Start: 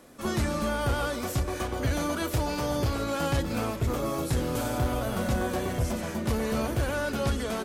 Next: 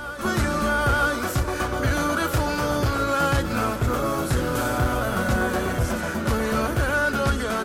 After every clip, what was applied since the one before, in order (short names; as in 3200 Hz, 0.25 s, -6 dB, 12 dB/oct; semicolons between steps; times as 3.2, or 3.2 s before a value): bell 1400 Hz +9 dB 0.53 oct; reverse echo 0.949 s -12 dB; gain +4 dB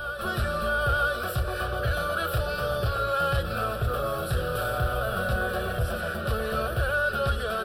in parallel at +2 dB: limiter -22 dBFS, peak gain reduction 10.5 dB; on the sum: fixed phaser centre 1400 Hz, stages 8; gain -6 dB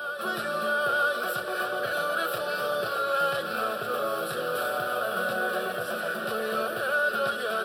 HPF 210 Hz 24 dB/oct; on a send: thinning echo 0.315 s, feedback 81%, level -11.5 dB